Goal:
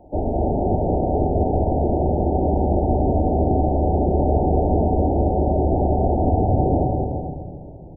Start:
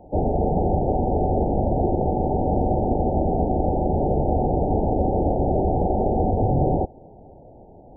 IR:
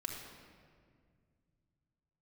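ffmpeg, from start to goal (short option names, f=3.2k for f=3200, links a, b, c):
-filter_complex "[0:a]aecho=1:1:190|332.5|439.4|519.5|579.6:0.631|0.398|0.251|0.158|0.1,asplit=2[a][b];[1:a]atrim=start_sample=2205[c];[b][c]afir=irnorm=-1:irlink=0,volume=0dB[d];[a][d]amix=inputs=2:normalize=0,volume=-6dB"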